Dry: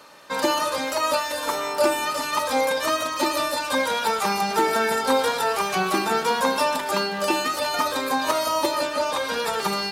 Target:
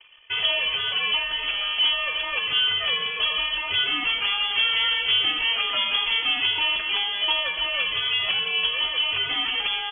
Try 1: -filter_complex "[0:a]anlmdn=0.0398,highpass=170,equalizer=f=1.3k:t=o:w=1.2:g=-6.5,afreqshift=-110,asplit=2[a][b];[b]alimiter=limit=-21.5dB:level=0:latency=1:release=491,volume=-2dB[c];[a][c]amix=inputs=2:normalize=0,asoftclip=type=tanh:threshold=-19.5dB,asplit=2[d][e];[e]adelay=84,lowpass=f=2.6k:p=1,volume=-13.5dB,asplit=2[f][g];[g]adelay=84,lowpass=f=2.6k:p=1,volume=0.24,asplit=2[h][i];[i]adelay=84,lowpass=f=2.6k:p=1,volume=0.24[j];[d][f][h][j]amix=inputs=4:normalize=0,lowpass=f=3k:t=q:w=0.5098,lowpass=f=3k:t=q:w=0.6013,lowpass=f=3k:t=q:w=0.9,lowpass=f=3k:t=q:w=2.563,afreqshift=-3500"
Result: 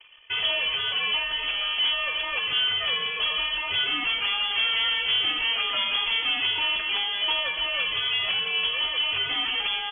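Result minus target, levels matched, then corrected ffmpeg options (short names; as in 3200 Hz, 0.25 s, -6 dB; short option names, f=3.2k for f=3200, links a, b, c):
soft clip: distortion +8 dB
-filter_complex "[0:a]anlmdn=0.0398,highpass=170,equalizer=f=1.3k:t=o:w=1.2:g=-6.5,afreqshift=-110,asplit=2[a][b];[b]alimiter=limit=-21.5dB:level=0:latency=1:release=491,volume=-2dB[c];[a][c]amix=inputs=2:normalize=0,asoftclip=type=tanh:threshold=-13dB,asplit=2[d][e];[e]adelay=84,lowpass=f=2.6k:p=1,volume=-13.5dB,asplit=2[f][g];[g]adelay=84,lowpass=f=2.6k:p=1,volume=0.24,asplit=2[h][i];[i]adelay=84,lowpass=f=2.6k:p=1,volume=0.24[j];[d][f][h][j]amix=inputs=4:normalize=0,lowpass=f=3k:t=q:w=0.5098,lowpass=f=3k:t=q:w=0.6013,lowpass=f=3k:t=q:w=0.9,lowpass=f=3k:t=q:w=2.563,afreqshift=-3500"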